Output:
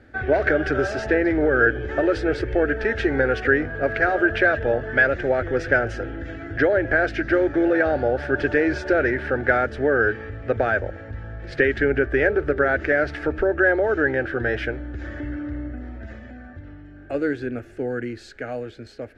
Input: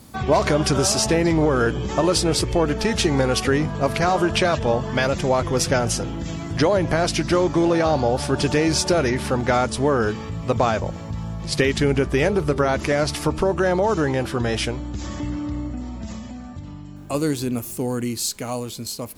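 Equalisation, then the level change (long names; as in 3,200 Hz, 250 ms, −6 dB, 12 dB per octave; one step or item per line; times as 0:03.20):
low-pass with resonance 1,600 Hz, resonance Q 7.1
phaser with its sweep stopped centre 430 Hz, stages 4
0.0 dB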